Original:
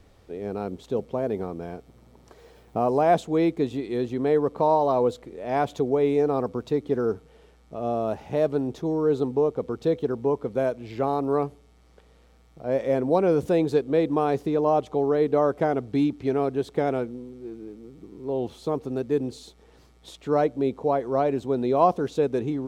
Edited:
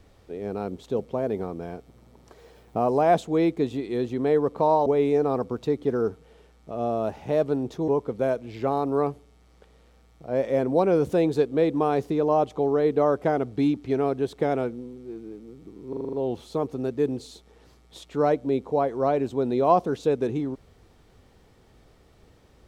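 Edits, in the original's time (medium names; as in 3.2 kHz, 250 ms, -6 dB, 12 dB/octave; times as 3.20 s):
4.86–5.90 s: delete
8.92–10.24 s: delete
18.25 s: stutter 0.04 s, 7 plays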